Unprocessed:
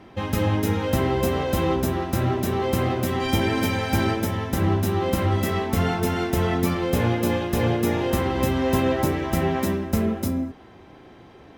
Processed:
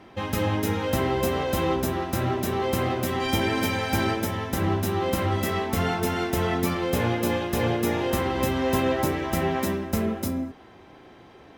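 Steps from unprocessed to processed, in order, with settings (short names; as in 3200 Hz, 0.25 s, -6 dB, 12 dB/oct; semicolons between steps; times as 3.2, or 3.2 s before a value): low shelf 310 Hz -5 dB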